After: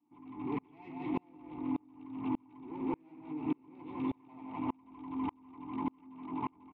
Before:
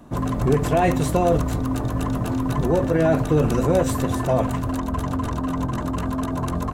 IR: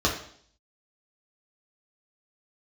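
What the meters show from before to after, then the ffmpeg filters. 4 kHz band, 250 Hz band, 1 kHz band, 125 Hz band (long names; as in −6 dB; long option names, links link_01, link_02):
below −20 dB, −14.0 dB, −17.0 dB, −28.0 dB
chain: -filter_complex "[0:a]tiltshelf=frequency=810:gain=-4,aresample=8000,aresample=44100,aresample=16000,asoftclip=type=tanh:threshold=-20.5dB,aresample=44100,asplit=3[link_01][link_02][link_03];[link_01]bandpass=frequency=300:width_type=q:width=8,volume=0dB[link_04];[link_02]bandpass=frequency=870:width_type=q:width=8,volume=-6dB[link_05];[link_03]bandpass=frequency=2240:width_type=q:width=8,volume=-9dB[link_06];[link_04][link_05][link_06]amix=inputs=3:normalize=0,asplit=2[link_07][link_08];[link_08]adelay=174,lowpass=frequency=2400:poles=1,volume=-3dB,asplit=2[link_09][link_10];[link_10]adelay=174,lowpass=frequency=2400:poles=1,volume=0.47,asplit=2[link_11][link_12];[link_12]adelay=174,lowpass=frequency=2400:poles=1,volume=0.47,asplit=2[link_13][link_14];[link_14]adelay=174,lowpass=frequency=2400:poles=1,volume=0.47,asplit=2[link_15][link_16];[link_16]adelay=174,lowpass=frequency=2400:poles=1,volume=0.47,asplit=2[link_17][link_18];[link_18]adelay=174,lowpass=frequency=2400:poles=1,volume=0.47[link_19];[link_09][link_11][link_13][link_15][link_17][link_19]amix=inputs=6:normalize=0[link_20];[link_07][link_20]amix=inputs=2:normalize=0,acompressor=threshold=-42dB:ratio=4,aeval=exprs='val(0)*pow(10,-36*if(lt(mod(-1.7*n/s,1),2*abs(-1.7)/1000),1-mod(-1.7*n/s,1)/(2*abs(-1.7)/1000),(mod(-1.7*n/s,1)-2*abs(-1.7)/1000)/(1-2*abs(-1.7)/1000))/20)':channel_layout=same,volume=13.5dB"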